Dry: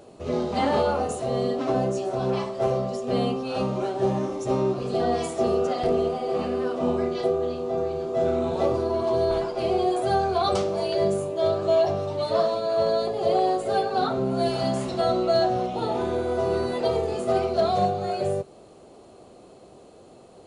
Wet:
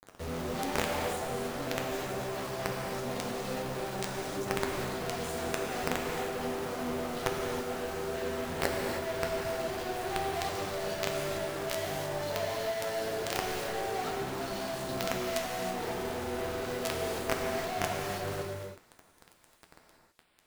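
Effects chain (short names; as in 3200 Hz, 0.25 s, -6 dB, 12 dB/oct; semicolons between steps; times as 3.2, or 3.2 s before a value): low shelf 200 Hz +4.5 dB; companded quantiser 2-bit; flange 1.8 Hz, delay 9.4 ms, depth 3.7 ms, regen +62%; non-linear reverb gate 0.35 s flat, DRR 0.5 dB; gain -8 dB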